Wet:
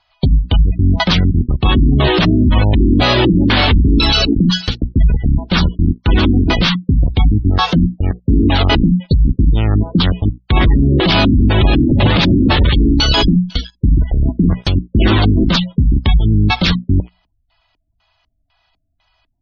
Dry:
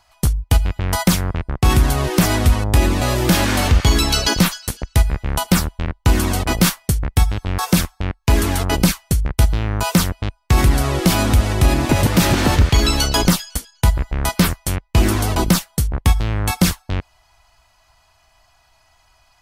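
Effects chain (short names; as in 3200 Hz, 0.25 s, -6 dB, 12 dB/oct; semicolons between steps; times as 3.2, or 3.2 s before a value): notches 60/120/180/240 Hz; sample leveller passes 3; LFO low-pass square 2 Hz 270–3600 Hz; limiter -4.5 dBFS, peak gain reduction 8 dB; spectral gate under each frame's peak -25 dB strong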